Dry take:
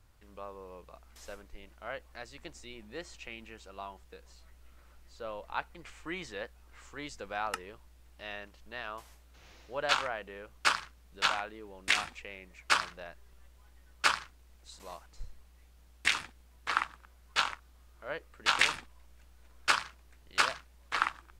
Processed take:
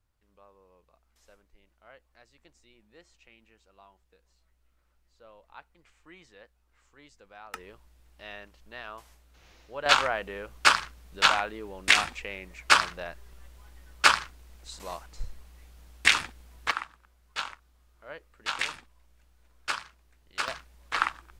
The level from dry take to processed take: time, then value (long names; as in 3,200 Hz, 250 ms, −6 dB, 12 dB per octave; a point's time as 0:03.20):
−13 dB
from 0:07.54 −1 dB
from 0:09.86 +7.5 dB
from 0:16.71 −4.5 dB
from 0:20.48 +3 dB